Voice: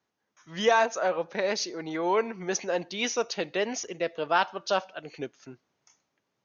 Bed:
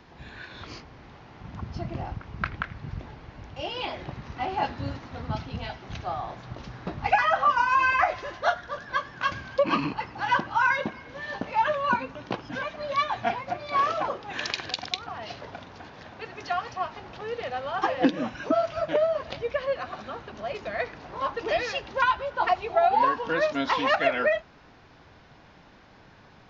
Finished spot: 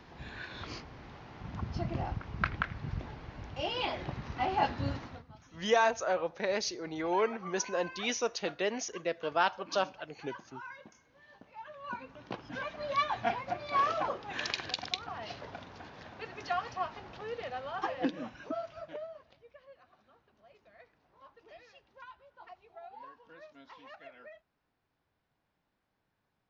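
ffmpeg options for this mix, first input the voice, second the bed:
ffmpeg -i stem1.wav -i stem2.wav -filter_complex "[0:a]adelay=5050,volume=-4dB[link_01];[1:a]volume=17.5dB,afade=type=out:start_time=5.02:duration=0.22:silence=0.0794328,afade=type=in:start_time=11.71:duration=1.17:silence=0.112202,afade=type=out:start_time=16.77:duration=2.57:silence=0.0668344[link_02];[link_01][link_02]amix=inputs=2:normalize=0" out.wav

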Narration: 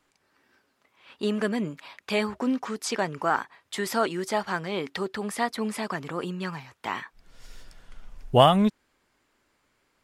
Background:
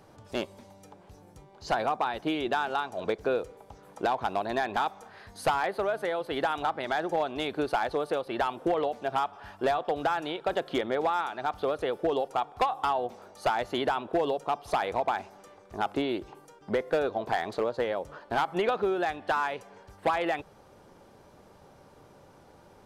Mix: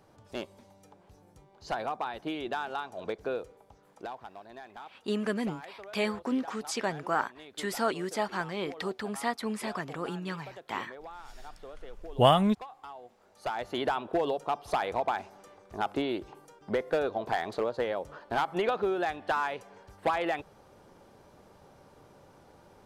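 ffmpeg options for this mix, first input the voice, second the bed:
ffmpeg -i stem1.wav -i stem2.wav -filter_complex "[0:a]adelay=3850,volume=-4dB[link_01];[1:a]volume=11dB,afade=type=out:start_time=3.37:duration=0.96:silence=0.237137,afade=type=in:start_time=13.17:duration=0.71:silence=0.149624[link_02];[link_01][link_02]amix=inputs=2:normalize=0" out.wav

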